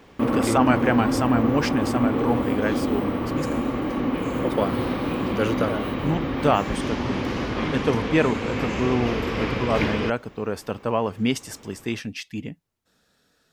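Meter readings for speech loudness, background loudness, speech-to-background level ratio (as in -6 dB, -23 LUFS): -26.0 LUFS, -25.5 LUFS, -0.5 dB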